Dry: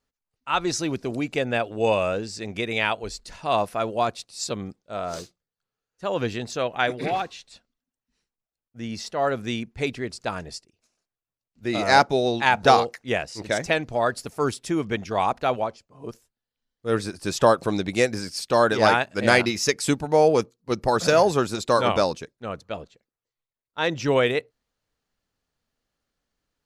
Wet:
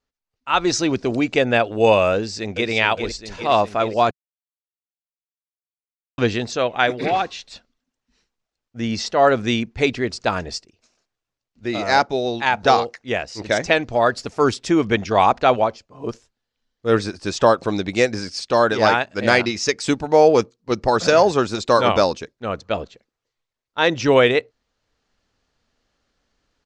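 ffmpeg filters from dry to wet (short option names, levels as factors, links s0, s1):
-filter_complex "[0:a]asplit=2[s0][s1];[s1]afade=t=in:st=2.15:d=0.01,afade=t=out:st=2.7:d=0.01,aecho=0:1:410|820|1230|1640|2050|2460|2870|3280|3690|4100|4510:0.446684|0.312679|0.218875|0.153212|0.107249|0.0750741|0.0525519|0.0367863|0.0257504|0.0180253|0.0126177[s2];[s0][s2]amix=inputs=2:normalize=0,asplit=3[s3][s4][s5];[s3]atrim=end=4.11,asetpts=PTS-STARTPTS,afade=t=out:st=4.106:d=0.004:c=hsin[s6];[s4]atrim=start=4.11:end=6.18,asetpts=PTS-STARTPTS,volume=0[s7];[s5]atrim=start=6.18,asetpts=PTS-STARTPTS,afade=t=in:d=0.004:c=hsin[s8];[s6][s7][s8]concat=n=3:v=0:a=1,lowpass=f=6900:w=0.5412,lowpass=f=6900:w=1.3066,equalizer=f=150:t=o:w=0.41:g=-5.5,dynaudnorm=f=140:g=7:m=3.76,volume=0.891"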